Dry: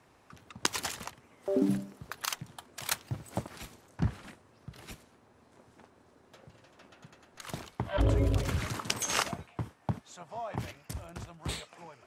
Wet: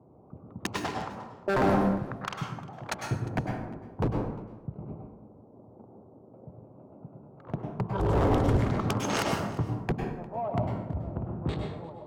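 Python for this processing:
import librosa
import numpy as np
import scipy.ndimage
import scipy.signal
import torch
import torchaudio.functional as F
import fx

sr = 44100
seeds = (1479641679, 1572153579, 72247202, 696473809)

p1 = fx.wiener(x, sr, points=25)
p2 = fx.env_lowpass(p1, sr, base_hz=930.0, full_db=-25.5)
p3 = scipy.signal.sosfilt(scipy.signal.butter(2, 81.0, 'highpass', fs=sr, output='sos'), p2)
p4 = fx.tilt_shelf(p3, sr, db=6.0, hz=1300.0)
p5 = fx.level_steps(p4, sr, step_db=13)
p6 = p4 + (p5 * librosa.db_to_amplitude(-0.5))
p7 = fx.fixed_phaser(p6, sr, hz=410.0, stages=8, at=(7.56, 8.13))
p8 = 10.0 ** (-20.0 / 20.0) * (np.abs((p7 / 10.0 ** (-20.0 / 20.0) + 3.0) % 4.0 - 2.0) - 1.0)
p9 = p8 + fx.echo_single(p8, sr, ms=353, db=-21.0, dry=0)
y = fx.rev_plate(p9, sr, seeds[0], rt60_s=0.86, hf_ratio=0.6, predelay_ms=90, drr_db=1.5)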